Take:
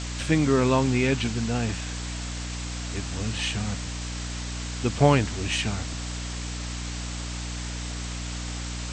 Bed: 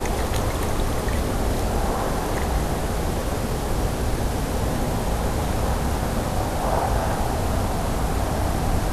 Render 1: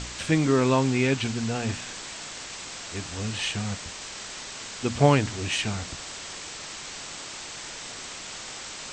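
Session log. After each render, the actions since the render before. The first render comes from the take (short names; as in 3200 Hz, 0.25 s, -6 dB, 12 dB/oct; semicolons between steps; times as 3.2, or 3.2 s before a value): de-hum 60 Hz, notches 5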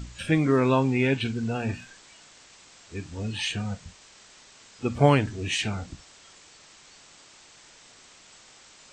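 noise print and reduce 14 dB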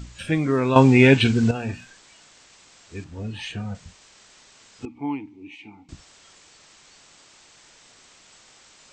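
0.76–1.51 gain +10 dB; 3.04–3.75 high shelf 2900 Hz -10 dB; 4.85–5.89 vowel filter u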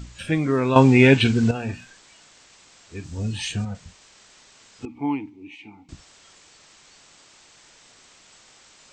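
3.04–3.65 tone controls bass +6 dB, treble +14 dB; 4.89–5.3 gain +3 dB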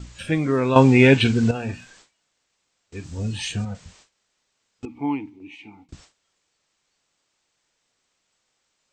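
bell 510 Hz +2.5 dB 0.26 oct; gate with hold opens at -38 dBFS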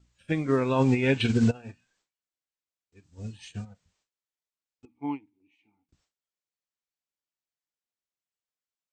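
limiter -12 dBFS, peak gain reduction 10.5 dB; upward expander 2.5:1, over -35 dBFS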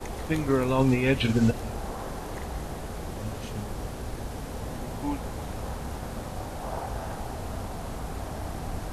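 add bed -11.5 dB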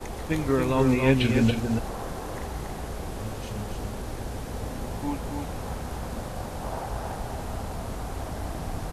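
echo 0.28 s -5 dB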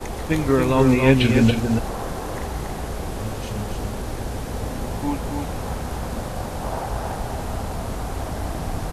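gain +5.5 dB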